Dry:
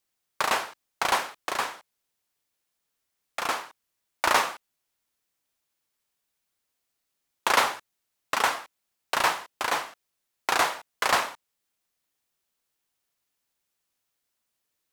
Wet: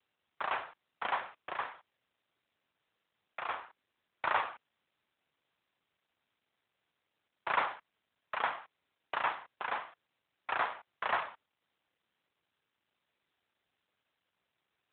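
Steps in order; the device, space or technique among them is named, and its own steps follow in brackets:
telephone (band-pass filter 380–3,200 Hz; level −7 dB; AMR narrowband 12.2 kbit/s 8,000 Hz)

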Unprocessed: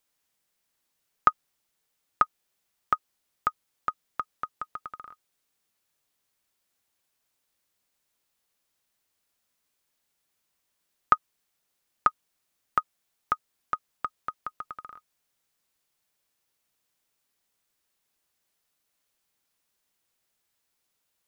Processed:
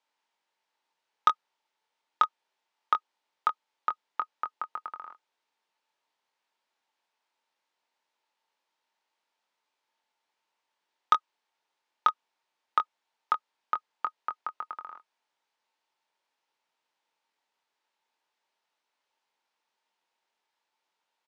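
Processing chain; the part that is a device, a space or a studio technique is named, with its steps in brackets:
intercom (band-pass filter 360–4,000 Hz; parametric band 900 Hz +12 dB 0.23 octaves; soft clipping −9.5 dBFS, distortion −13 dB; double-tracking delay 23 ms −8 dB)

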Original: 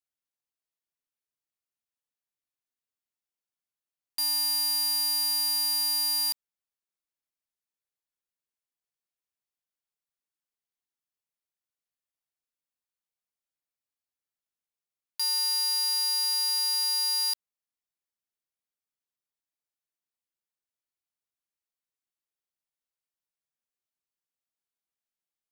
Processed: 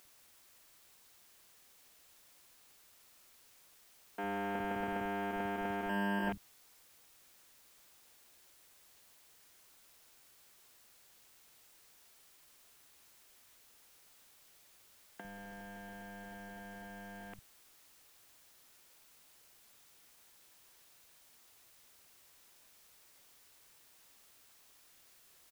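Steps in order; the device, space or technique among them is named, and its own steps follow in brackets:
army field radio (band-pass filter 310–3,300 Hz; variable-slope delta modulation 16 kbit/s; white noise bed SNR 16 dB)
0:05.89–0:06.29: EQ curve with evenly spaced ripples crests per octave 1.3, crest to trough 17 dB
multiband delay without the direct sound highs, lows 50 ms, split 180 Hz
level +17 dB

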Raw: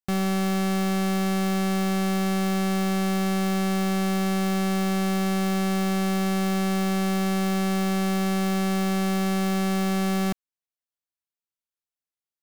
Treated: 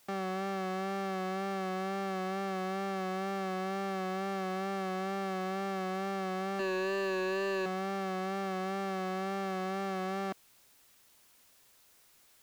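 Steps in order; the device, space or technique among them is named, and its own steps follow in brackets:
0:06.59–0:07.66: EQ curve with evenly spaced ripples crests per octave 1.4, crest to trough 15 dB
tape answering machine (band-pass filter 380–2,800 Hz; soft clipping −24.5 dBFS, distortion −14 dB; tape wow and flutter 41 cents; white noise bed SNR 28 dB)
level −2 dB

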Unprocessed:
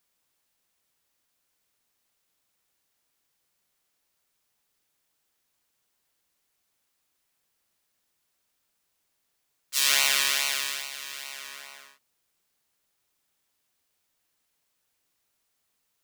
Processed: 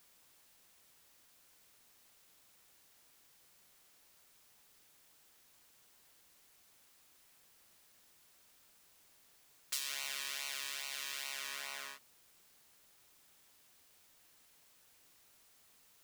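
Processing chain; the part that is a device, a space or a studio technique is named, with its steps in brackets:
serial compression, leveller first (downward compressor 2 to 1, threshold −30 dBFS, peak gain reduction 8 dB; downward compressor 6 to 1, threshold −47 dBFS, peak gain reduction 21 dB)
level +9.5 dB

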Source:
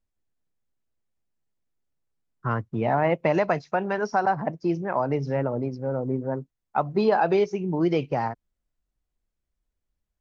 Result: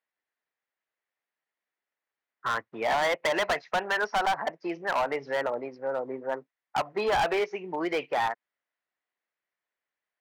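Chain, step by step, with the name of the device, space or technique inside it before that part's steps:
megaphone (band-pass filter 670–3,000 Hz; parametric band 1,900 Hz +7.5 dB 0.47 octaves; hard clipping −26 dBFS, distortion −7 dB)
level +4 dB

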